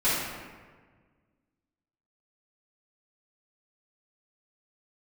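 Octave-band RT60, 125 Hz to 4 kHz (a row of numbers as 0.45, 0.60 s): 2.1, 1.9, 1.6, 1.4, 1.3, 0.90 s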